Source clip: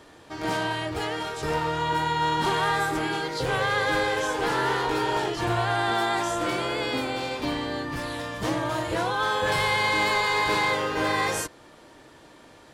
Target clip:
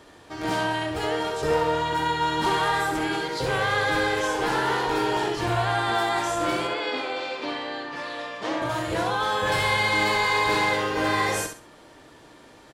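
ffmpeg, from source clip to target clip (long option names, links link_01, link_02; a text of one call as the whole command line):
ffmpeg -i in.wav -filter_complex "[0:a]asettb=1/sr,asplit=3[link_01][link_02][link_03];[link_01]atrim=end=1.034[link_04];[link_02]atrim=start=1.03:end=1.75,asetpts=PTS-STARTPTS,afade=type=in:duration=0.004:curve=qsin,afade=type=out:start_time=0.716:duration=0.004:curve=qsin,equalizer=frequency=520:width=1.9:gain=7[link_05];[link_03]atrim=start=1.746[link_06];[link_04][link_05]acrossfade=duration=0.004:curve1=hsin:curve2=qsin[link_07];[link_07][link_06]acrossfade=duration=0.004:curve1=qsin:curve2=hsin,asettb=1/sr,asplit=3[link_08][link_09][link_10];[link_08]atrim=end=6.674[link_11];[link_09]atrim=start=6.67:end=8.62,asetpts=PTS-STARTPTS,afade=type=in:duration=0.004:curve=qsin,afade=type=out:start_time=1.946:duration=0.004:curve=qsin,highpass=340,lowpass=4800[link_12];[link_10]atrim=start=8.616[link_13];[link_11][link_12]acrossfade=duration=0.004:curve1=hsin:curve2=qsin[link_14];[link_14][link_13]acrossfade=duration=0.004:curve1=qsin:curve2=hsin,aecho=1:1:67|134|201:0.447|0.121|0.0326" out.wav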